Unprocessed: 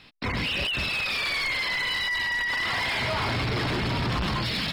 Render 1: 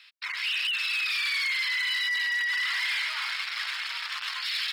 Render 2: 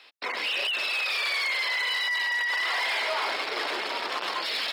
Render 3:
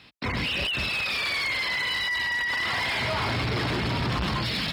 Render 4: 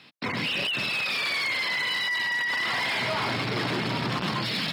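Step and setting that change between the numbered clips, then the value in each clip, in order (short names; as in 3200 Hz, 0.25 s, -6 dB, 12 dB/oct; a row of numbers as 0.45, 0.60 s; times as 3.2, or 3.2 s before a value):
HPF, cutoff: 1400, 430, 44, 130 Hz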